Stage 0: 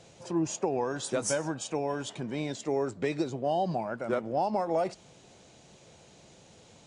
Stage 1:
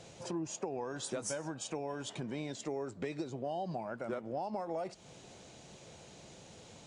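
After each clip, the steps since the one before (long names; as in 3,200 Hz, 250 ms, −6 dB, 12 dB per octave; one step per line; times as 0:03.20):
downward compressor 3 to 1, threshold −40 dBFS, peak gain reduction 12 dB
level +1.5 dB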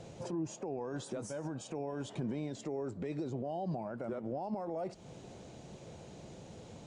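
brickwall limiter −34.5 dBFS, peak gain reduction 10 dB
tilt shelving filter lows +5.5 dB
level +1 dB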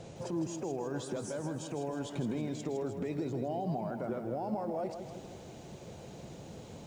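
feedback echo at a low word length 159 ms, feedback 55%, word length 11 bits, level −8 dB
level +2 dB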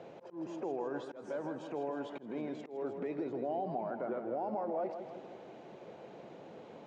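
volume swells 187 ms
band-pass filter 310–2,200 Hz
level +1 dB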